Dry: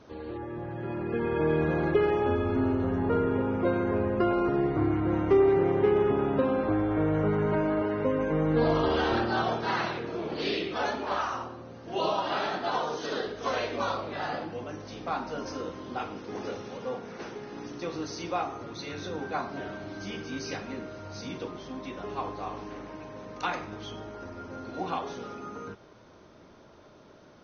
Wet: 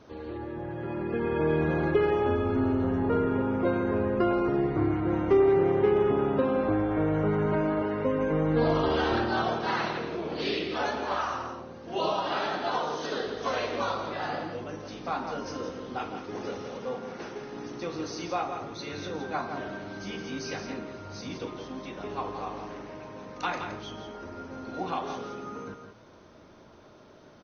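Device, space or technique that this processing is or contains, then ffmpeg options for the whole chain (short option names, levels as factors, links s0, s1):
ducked delay: -filter_complex "[0:a]asplit=3[s0][s1][s2];[s1]adelay=168,volume=0.422[s3];[s2]apad=whole_len=1217224[s4];[s3][s4]sidechaincompress=threshold=0.0282:ratio=8:attack=16:release=163[s5];[s0][s5]amix=inputs=2:normalize=0"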